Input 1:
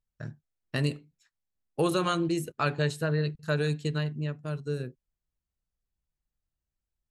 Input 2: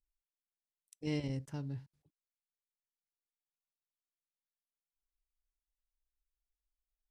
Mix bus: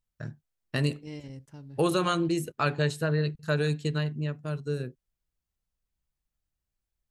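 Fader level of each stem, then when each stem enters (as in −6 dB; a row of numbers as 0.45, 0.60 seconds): +1.0, −5.0 decibels; 0.00, 0.00 seconds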